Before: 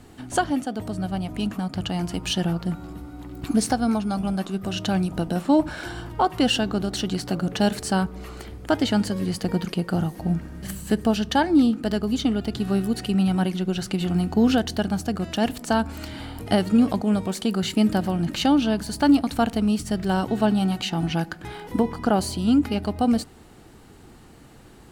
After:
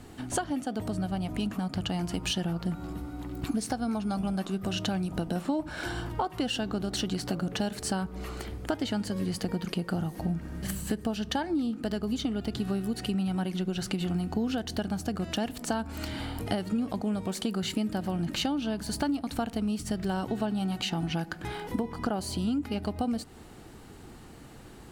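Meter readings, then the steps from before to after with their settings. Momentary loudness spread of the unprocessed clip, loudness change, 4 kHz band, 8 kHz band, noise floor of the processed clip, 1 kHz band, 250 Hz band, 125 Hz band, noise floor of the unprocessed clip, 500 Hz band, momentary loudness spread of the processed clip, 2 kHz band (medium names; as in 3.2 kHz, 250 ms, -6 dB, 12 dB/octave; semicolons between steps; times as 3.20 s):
10 LU, -8.0 dB, -5.5 dB, -4.5 dB, -48 dBFS, -8.5 dB, -8.5 dB, -6.0 dB, -48 dBFS, -8.0 dB, 6 LU, -7.0 dB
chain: compression, threshold -27 dBFS, peak gain reduction 14 dB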